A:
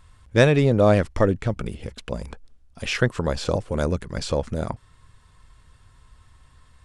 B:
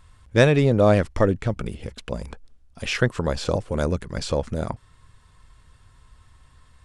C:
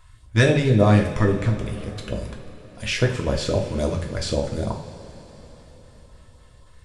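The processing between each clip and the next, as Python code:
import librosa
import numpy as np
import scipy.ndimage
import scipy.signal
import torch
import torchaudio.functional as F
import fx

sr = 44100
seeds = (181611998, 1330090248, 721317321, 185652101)

y1 = x
y2 = fx.filter_lfo_notch(y1, sr, shape='saw_up', hz=3.6, low_hz=220.0, high_hz=2600.0, q=0.77)
y2 = fx.rev_double_slope(y2, sr, seeds[0], early_s=0.47, late_s=4.7, knee_db=-18, drr_db=0.5)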